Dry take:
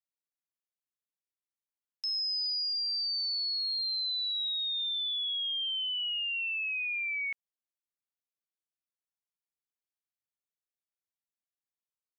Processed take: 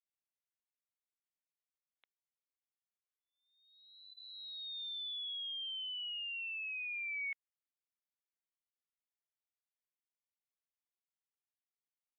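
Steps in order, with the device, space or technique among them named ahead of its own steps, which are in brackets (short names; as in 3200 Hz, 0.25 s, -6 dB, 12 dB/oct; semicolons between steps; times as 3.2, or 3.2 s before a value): musical greeting card (downsampling 8000 Hz; HPF 500 Hz; bell 2100 Hz +6 dB 0.24 oct); gain -9 dB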